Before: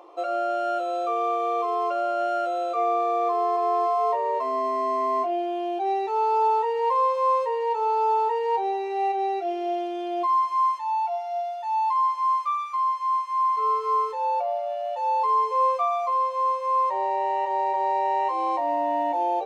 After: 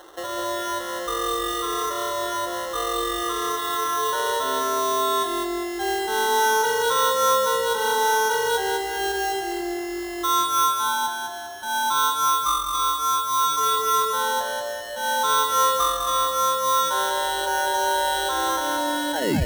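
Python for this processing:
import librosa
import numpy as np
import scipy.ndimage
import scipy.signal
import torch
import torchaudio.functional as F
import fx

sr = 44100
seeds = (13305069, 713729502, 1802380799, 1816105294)

p1 = fx.tape_stop_end(x, sr, length_s=0.32)
p2 = fx.notch(p1, sr, hz=690.0, q=12.0)
p3 = fx.dynamic_eq(p2, sr, hz=700.0, q=0.93, threshold_db=-36.0, ratio=4.0, max_db=-4)
p4 = fx.sample_hold(p3, sr, seeds[0], rate_hz=2400.0, jitter_pct=0)
p5 = p4 + fx.echo_feedback(p4, sr, ms=201, feedback_pct=40, wet_db=-5, dry=0)
y = F.gain(torch.from_numpy(p5), 3.0).numpy()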